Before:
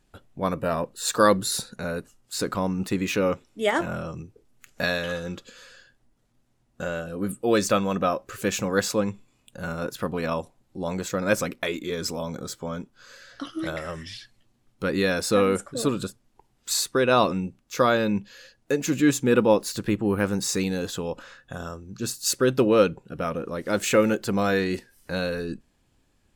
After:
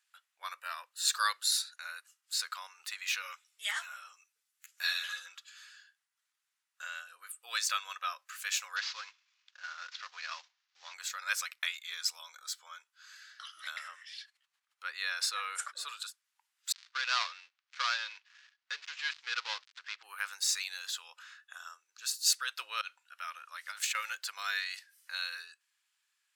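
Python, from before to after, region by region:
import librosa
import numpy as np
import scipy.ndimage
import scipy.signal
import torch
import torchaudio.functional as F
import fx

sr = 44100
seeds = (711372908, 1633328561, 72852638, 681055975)

y = fx.chain(x, sr, fx.high_shelf(hz=4900.0, db=8.0),
    fx.ensemble(), at=(3.22, 5.26))
y = fx.chain(y, sr, fx.cvsd(bps=32000),
    fx.highpass(hz=450.0, slope=12), at=(8.76, 10.94))
y = fx.chain(y, sr, fx.tilt_eq(slope=-2.5),
    fx.sustainer(db_per_s=80.0), at=(13.88, 15.88))
y = fx.chain(y, sr, fx.dead_time(dead_ms=0.13),
    fx.lowpass(hz=5400.0, slope=24), at=(16.72, 20.03))
y = fx.chain(y, sr, fx.peak_eq(hz=400.0, db=-15.0, octaves=0.54),
    fx.over_compress(threshold_db=-29.0, ratio=-0.5), at=(22.81, 23.95))
y = fx.dynamic_eq(y, sr, hz=4300.0, q=1.5, threshold_db=-46.0, ratio=4.0, max_db=5)
y = scipy.signal.sosfilt(scipy.signal.cheby2(4, 80, 220.0, 'highpass', fs=sr, output='sos'), y)
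y = y * librosa.db_to_amplitude(-4.5)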